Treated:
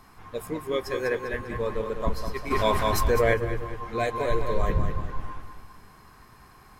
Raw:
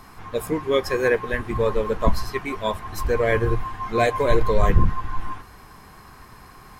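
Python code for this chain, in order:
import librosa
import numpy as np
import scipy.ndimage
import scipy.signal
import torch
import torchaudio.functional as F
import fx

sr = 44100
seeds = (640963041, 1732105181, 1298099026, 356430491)

y = fx.echo_feedback(x, sr, ms=199, feedback_pct=43, wet_db=-7.5)
y = fx.env_flatten(y, sr, amount_pct=70, at=(2.5, 3.33), fade=0.02)
y = F.gain(torch.from_numpy(y), -7.5).numpy()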